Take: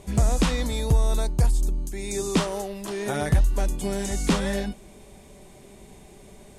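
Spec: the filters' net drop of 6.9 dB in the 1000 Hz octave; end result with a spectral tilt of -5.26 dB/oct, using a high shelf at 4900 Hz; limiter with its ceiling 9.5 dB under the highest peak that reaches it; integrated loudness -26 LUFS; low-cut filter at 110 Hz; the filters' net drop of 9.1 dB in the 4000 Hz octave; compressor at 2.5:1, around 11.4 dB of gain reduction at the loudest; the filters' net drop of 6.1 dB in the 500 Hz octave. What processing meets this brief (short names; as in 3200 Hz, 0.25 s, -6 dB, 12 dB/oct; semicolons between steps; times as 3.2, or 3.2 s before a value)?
HPF 110 Hz; bell 500 Hz -6.5 dB; bell 1000 Hz -6 dB; bell 4000 Hz -8 dB; high shelf 4900 Hz -7 dB; compressor 2.5:1, threshold -37 dBFS; gain +15 dB; limiter -16 dBFS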